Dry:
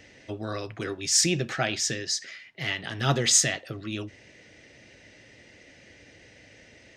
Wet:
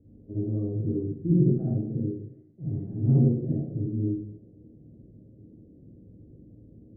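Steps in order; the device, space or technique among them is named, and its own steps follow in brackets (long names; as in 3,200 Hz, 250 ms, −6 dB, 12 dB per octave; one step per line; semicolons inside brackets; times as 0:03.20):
next room (low-pass filter 350 Hz 24 dB per octave; convolution reverb RT60 0.65 s, pre-delay 39 ms, DRR −8.5 dB)
level −2 dB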